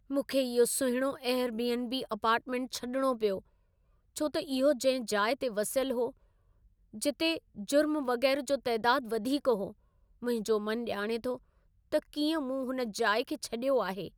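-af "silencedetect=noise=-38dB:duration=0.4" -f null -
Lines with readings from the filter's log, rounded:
silence_start: 3.39
silence_end: 4.17 | silence_duration: 0.78
silence_start: 6.10
silence_end: 6.94 | silence_duration: 0.85
silence_start: 9.70
silence_end: 10.23 | silence_duration: 0.52
silence_start: 11.36
silence_end: 11.92 | silence_duration: 0.56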